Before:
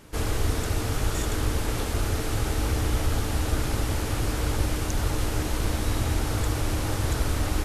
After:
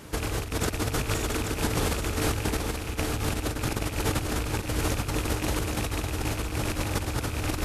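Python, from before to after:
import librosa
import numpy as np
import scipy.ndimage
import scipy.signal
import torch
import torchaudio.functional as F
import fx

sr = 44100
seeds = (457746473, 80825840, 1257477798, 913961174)

p1 = fx.rattle_buzz(x, sr, strikes_db=-23.0, level_db=-20.0)
p2 = scipy.signal.sosfilt(scipy.signal.butter(2, 44.0, 'highpass', fs=sr, output='sos'), p1)
p3 = fx.over_compress(p2, sr, threshold_db=-30.0, ratio=-0.5)
p4 = p3 + fx.echo_single(p3, sr, ms=829, db=-5.5, dry=0)
y = p4 * librosa.db_to_amplitude(1.5)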